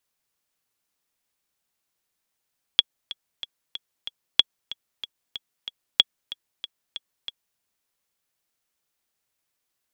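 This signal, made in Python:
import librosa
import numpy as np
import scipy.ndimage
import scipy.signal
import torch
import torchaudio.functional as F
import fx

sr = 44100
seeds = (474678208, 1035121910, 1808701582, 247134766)

y = fx.click_track(sr, bpm=187, beats=5, bars=3, hz=3350.0, accent_db=18.0, level_db=-1.0)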